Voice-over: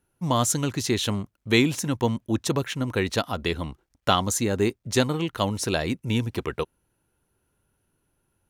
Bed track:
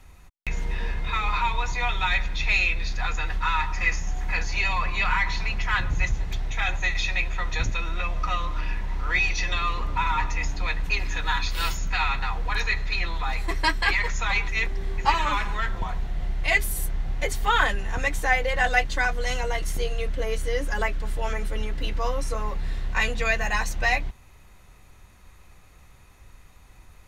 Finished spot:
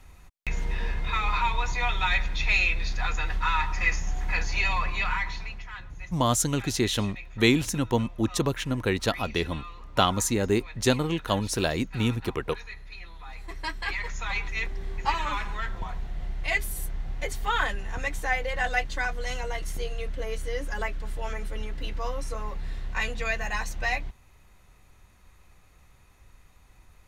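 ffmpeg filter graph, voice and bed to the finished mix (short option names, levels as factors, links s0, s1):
-filter_complex "[0:a]adelay=5900,volume=0.891[s0];[1:a]volume=3.35,afade=t=out:st=4.72:d=0.99:silence=0.16788,afade=t=in:st=13.18:d=1.33:silence=0.266073[s1];[s0][s1]amix=inputs=2:normalize=0"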